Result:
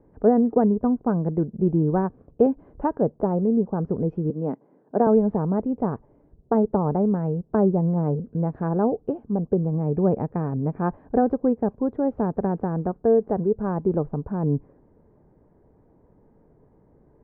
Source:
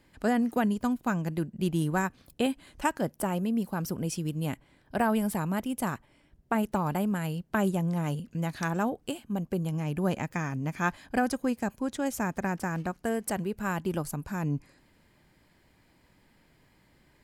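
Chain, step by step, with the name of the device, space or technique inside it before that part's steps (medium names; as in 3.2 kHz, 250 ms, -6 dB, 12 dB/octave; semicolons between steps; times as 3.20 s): under water (low-pass 1 kHz 24 dB/octave; peaking EQ 440 Hz +10 dB 0.31 oct); 4.30–5.07 s: high-pass 180 Hz 24 dB/octave; peaking EQ 1 kHz -3 dB 0.82 oct; trim +6.5 dB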